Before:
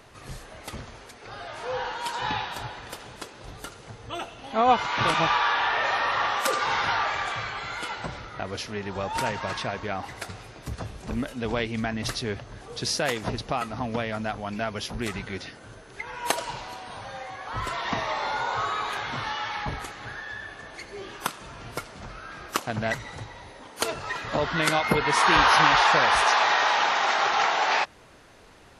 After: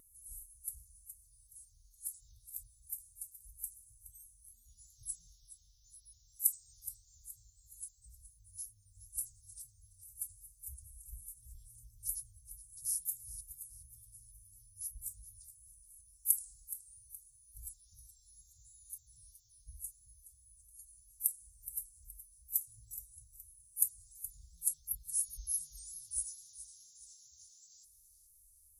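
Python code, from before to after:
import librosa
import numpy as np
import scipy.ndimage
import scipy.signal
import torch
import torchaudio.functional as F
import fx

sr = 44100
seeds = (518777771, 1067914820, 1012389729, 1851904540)

p1 = scipy.signal.sosfilt(scipy.signal.cheby2(4, 80, [350.0, 2400.0], 'bandstop', fs=sr, output='sos'), x)
p2 = F.preemphasis(torch.from_numpy(p1), 0.9).numpy()
p3 = fx.vibrato(p2, sr, rate_hz=2.9, depth_cents=38.0)
p4 = p3 + fx.echo_feedback(p3, sr, ms=421, feedback_pct=41, wet_db=-14.0, dry=0)
y = p4 * librosa.db_to_amplitude(8.0)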